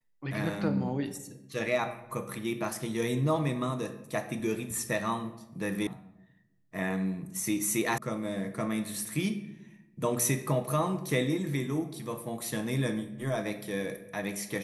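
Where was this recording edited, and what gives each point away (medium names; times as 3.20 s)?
5.87 s: sound stops dead
7.98 s: sound stops dead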